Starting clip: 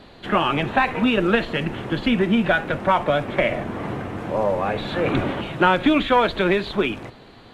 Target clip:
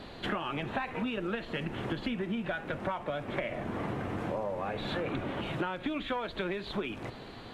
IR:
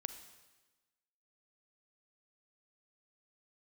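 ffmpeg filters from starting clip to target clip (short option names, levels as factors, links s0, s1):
-af "acompressor=threshold=0.0282:ratio=10"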